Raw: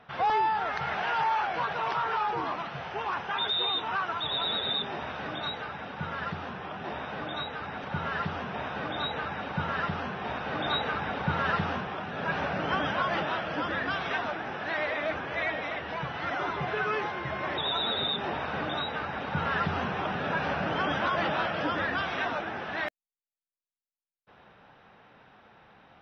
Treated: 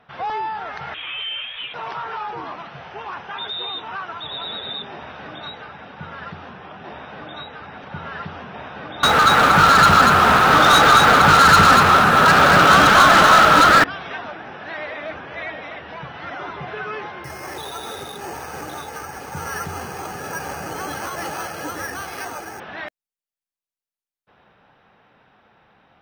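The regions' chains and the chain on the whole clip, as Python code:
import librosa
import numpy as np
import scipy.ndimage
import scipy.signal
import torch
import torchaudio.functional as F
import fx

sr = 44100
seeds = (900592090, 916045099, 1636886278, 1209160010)

y = fx.chain(x, sr, fx.highpass(hz=630.0, slope=6),
    fx.freq_invert(carrier_hz=4000), at=(0.94, 1.74))
y = fx.chain(y, sr, fx.peak_eq(hz=1300.0, db=13.5, octaves=0.36),
    fx.leveller(passes=5),
    fx.echo_single(ms=240, db=-3.5), at=(9.03, 13.84))
y = fx.chain(y, sr, fx.air_absorb(metres=58.0),
    fx.comb(ms=2.4, depth=0.41),
    fx.resample_bad(factor=6, down='filtered', up='hold'), at=(17.24, 22.6))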